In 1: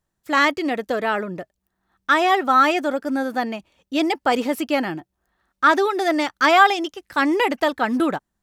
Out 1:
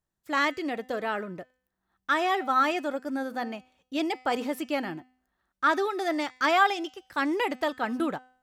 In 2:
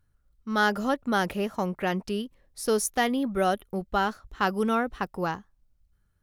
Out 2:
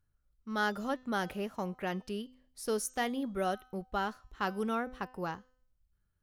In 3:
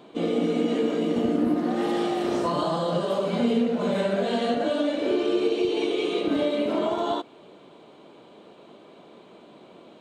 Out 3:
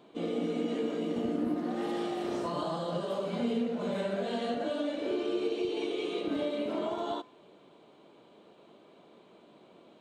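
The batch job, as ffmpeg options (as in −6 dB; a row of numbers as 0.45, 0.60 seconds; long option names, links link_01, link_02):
-af "bandreject=frequency=254.3:width_type=h:width=4,bandreject=frequency=508.6:width_type=h:width=4,bandreject=frequency=762.9:width_type=h:width=4,bandreject=frequency=1017.2:width_type=h:width=4,bandreject=frequency=1271.5:width_type=h:width=4,bandreject=frequency=1525.8:width_type=h:width=4,bandreject=frequency=1780.1:width_type=h:width=4,bandreject=frequency=2034.4:width_type=h:width=4,bandreject=frequency=2288.7:width_type=h:width=4,bandreject=frequency=2543:width_type=h:width=4,bandreject=frequency=2797.3:width_type=h:width=4,bandreject=frequency=3051.6:width_type=h:width=4,bandreject=frequency=3305.9:width_type=h:width=4,bandreject=frequency=3560.2:width_type=h:width=4,bandreject=frequency=3814.5:width_type=h:width=4,bandreject=frequency=4068.8:width_type=h:width=4,bandreject=frequency=4323.1:width_type=h:width=4,bandreject=frequency=4577.4:width_type=h:width=4,bandreject=frequency=4831.7:width_type=h:width=4,bandreject=frequency=5086:width_type=h:width=4,bandreject=frequency=5340.3:width_type=h:width=4,bandreject=frequency=5594.6:width_type=h:width=4,bandreject=frequency=5848.9:width_type=h:width=4,bandreject=frequency=6103.2:width_type=h:width=4,bandreject=frequency=6357.5:width_type=h:width=4,bandreject=frequency=6611.8:width_type=h:width=4,bandreject=frequency=6866.1:width_type=h:width=4,bandreject=frequency=7120.4:width_type=h:width=4,bandreject=frequency=7374.7:width_type=h:width=4,bandreject=frequency=7629:width_type=h:width=4,bandreject=frequency=7883.3:width_type=h:width=4,bandreject=frequency=8137.6:width_type=h:width=4,bandreject=frequency=8391.9:width_type=h:width=4,bandreject=frequency=8646.2:width_type=h:width=4,bandreject=frequency=8900.5:width_type=h:width=4,volume=-8dB"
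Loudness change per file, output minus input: −8.0, −8.0, −8.0 LU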